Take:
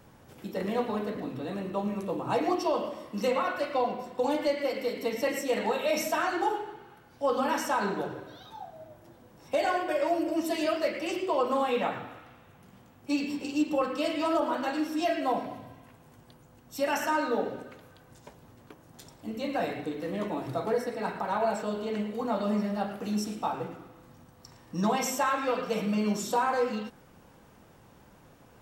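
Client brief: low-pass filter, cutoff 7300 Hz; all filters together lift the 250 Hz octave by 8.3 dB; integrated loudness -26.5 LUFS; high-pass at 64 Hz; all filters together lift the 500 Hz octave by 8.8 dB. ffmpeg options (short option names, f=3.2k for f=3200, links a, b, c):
-af "highpass=64,lowpass=7.3k,equalizer=f=250:t=o:g=8,equalizer=f=500:t=o:g=8.5,volume=-3.5dB"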